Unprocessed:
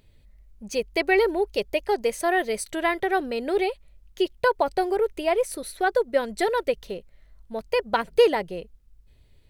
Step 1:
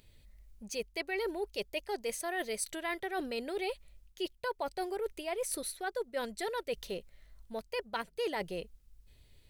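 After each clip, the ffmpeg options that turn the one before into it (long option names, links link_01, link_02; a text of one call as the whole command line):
ffmpeg -i in.wav -af "highshelf=frequency=2400:gain=8.5,areverse,acompressor=threshold=-29dB:ratio=5,areverse,volume=-4.5dB" out.wav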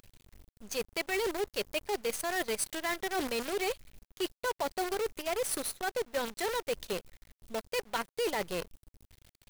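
ffmpeg -i in.wav -af "acrusher=bits=7:dc=4:mix=0:aa=0.000001,volume=2.5dB" out.wav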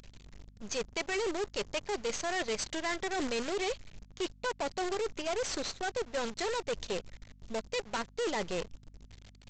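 ffmpeg -i in.wav -af "aeval=exprs='val(0)+0.000794*(sin(2*PI*50*n/s)+sin(2*PI*2*50*n/s)/2+sin(2*PI*3*50*n/s)/3+sin(2*PI*4*50*n/s)/4+sin(2*PI*5*50*n/s)/5)':channel_layout=same,aresample=16000,asoftclip=type=hard:threshold=-35dB,aresample=44100,volume=5.5dB" out.wav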